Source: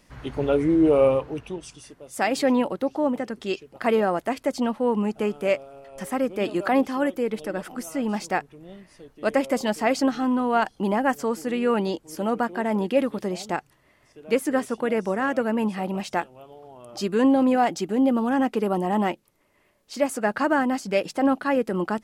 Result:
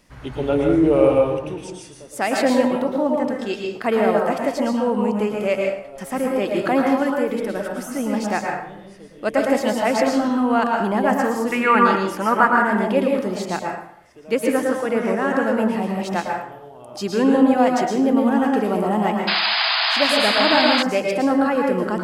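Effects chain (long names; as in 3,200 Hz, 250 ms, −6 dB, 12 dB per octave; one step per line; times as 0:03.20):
0:11.52–0:12.59: flat-topped bell 1,500 Hz +12.5 dB
dense smooth reverb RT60 0.67 s, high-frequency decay 0.7×, pre-delay 100 ms, DRR 0 dB
0:19.27–0:20.83: sound drawn into the spectrogram noise 630–5,100 Hz −21 dBFS
level +1 dB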